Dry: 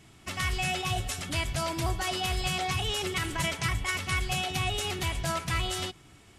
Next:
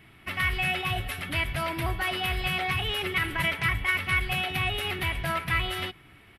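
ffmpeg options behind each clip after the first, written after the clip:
ffmpeg -i in.wav -af "firequalizer=gain_entry='entry(800,0);entry(2000,8);entry(6800,-20);entry(11000,2)':delay=0.05:min_phase=1" out.wav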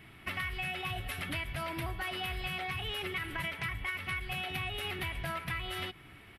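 ffmpeg -i in.wav -af "acompressor=threshold=-34dB:ratio=6" out.wav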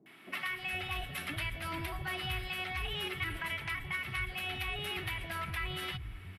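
ffmpeg -i in.wav -filter_complex "[0:a]acrossover=split=190|600[link_01][link_02][link_03];[link_03]adelay=60[link_04];[link_01]adelay=460[link_05];[link_05][link_02][link_04]amix=inputs=3:normalize=0" out.wav

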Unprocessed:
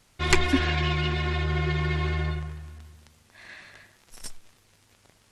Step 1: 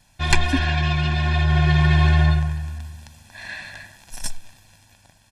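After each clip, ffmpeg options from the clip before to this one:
ffmpeg -i in.wav -af "equalizer=frequency=1200:width_type=o:width=0.21:gain=-4,aecho=1:1:1.2:0.76,dynaudnorm=framelen=290:gausssize=7:maxgain=7.5dB,volume=1dB" out.wav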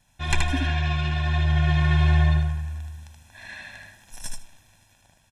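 ffmpeg -i in.wav -af "asuperstop=centerf=4600:order=4:qfactor=6.1,aecho=1:1:77|154|231:0.668|0.1|0.015,volume=-6.5dB" out.wav

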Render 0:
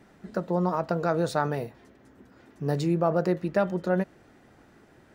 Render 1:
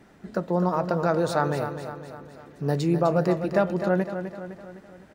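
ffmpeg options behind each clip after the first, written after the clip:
ffmpeg -i in.wav -af "aecho=1:1:255|510|765|1020|1275|1530:0.355|0.185|0.0959|0.0499|0.0259|0.0135,volume=2dB" out.wav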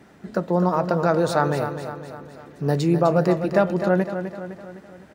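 ffmpeg -i in.wav -af "highpass=58,volume=3.5dB" out.wav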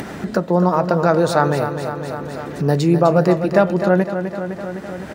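ffmpeg -i in.wav -af "acompressor=mode=upward:threshold=-21dB:ratio=2.5,volume=4.5dB" out.wav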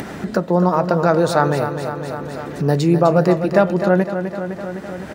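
ffmpeg -i in.wav -ar 48000 -c:a aac -b:a 192k out.aac

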